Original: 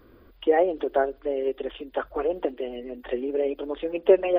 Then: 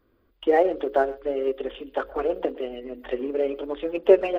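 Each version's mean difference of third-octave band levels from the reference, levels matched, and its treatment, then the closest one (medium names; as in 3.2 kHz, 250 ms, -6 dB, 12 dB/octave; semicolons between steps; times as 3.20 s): 2.0 dB: hum notches 60/120/180/240/300/360/420/480/540 Hz; gate -44 dBFS, range -12 dB; in parallel at -11 dB: crossover distortion -32.5 dBFS; on the sum: speakerphone echo 120 ms, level -21 dB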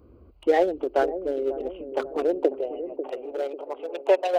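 5.0 dB: local Wiener filter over 25 samples; treble shelf 2.6 kHz +9 dB; high-pass sweep 62 Hz -> 750 Hz, 1.69–2.76 s; on a send: feedback echo behind a low-pass 543 ms, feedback 46%, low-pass 460 Hz, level -7 dB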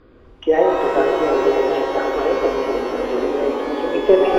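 10.5 dB: tracing distortion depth 0.031 ms; distance through air 94 m; on a send: delay with an opening low-pass 244 ms, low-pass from 200 Hz, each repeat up 1 oct, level 0 dB; on the sum: pitch-shifted reverb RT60 2.1 s, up +12 st, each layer -8 dB, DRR 0 dB; trim +3.5 dB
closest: first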